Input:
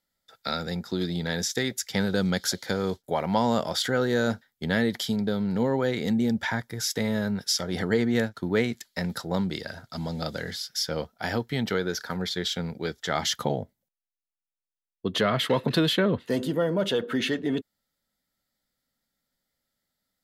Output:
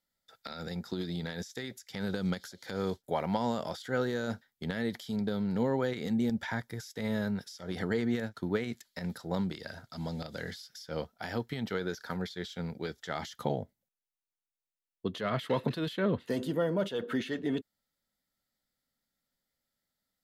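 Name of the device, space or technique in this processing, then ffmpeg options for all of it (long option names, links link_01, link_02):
de-esser from a sidechain: -filter_complex "[0:a]asplit=2[link_01][link_02];[link_02]highpass=4700,apad=whole_len=892376[link_03];[link_01][link_03]sidechaincompress=threshold=-41dB:ratio=10:attack=2:release=99,volume=-4.5dB"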